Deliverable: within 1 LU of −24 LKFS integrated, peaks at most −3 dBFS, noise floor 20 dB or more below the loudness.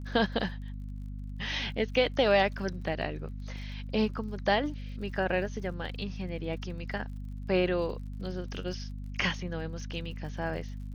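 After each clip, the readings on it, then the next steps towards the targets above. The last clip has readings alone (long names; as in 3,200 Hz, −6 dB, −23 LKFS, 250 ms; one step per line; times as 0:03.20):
crackle rate 47 per second; mains hum 50 Hz; hum harmonics up to 250 Hz; level of the hum −36 dBFS; integrated loudness −32.0 LKFS; sample peak −11.5 dBFS; target loudness −24.0 LKFS
→ click removal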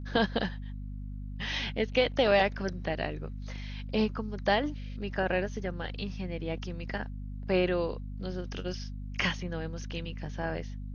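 crackle rate 0.091 per second; mains hum 50 Hz; hum harmonics up to 250 Hz; level of the hum −36 dBFS
→ hum removal 50 Hz, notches 5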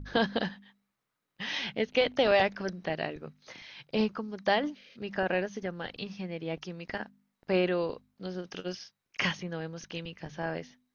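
mains hum none found; integrated loudness −32.0 LKFS; sample peak −12.0 dBFS; target loudness −24.0 LKFS
→ level +8 dB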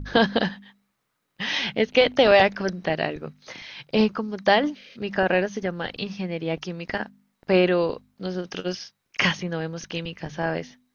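integrated loudness −24.0 LKFS; sample peak −4.0 dBFS; background noise floor −76 dBFS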